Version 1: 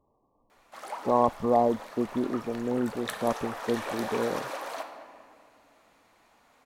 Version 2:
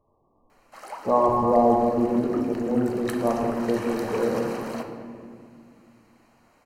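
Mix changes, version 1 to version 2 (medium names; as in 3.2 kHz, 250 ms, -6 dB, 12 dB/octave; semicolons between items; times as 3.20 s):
speech: send on; master: add Butterworth band-stop 3.5 kHz, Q 6.1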